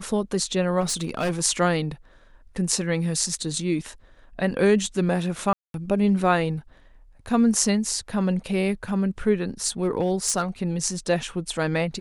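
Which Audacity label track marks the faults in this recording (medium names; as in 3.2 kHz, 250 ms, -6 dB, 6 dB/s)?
0.800000	1.320000	clipped -20.5 dBFS
5.530000	5.740000	dropout 212 ms
9.650000	10.430000	clipped -15.5 dBFS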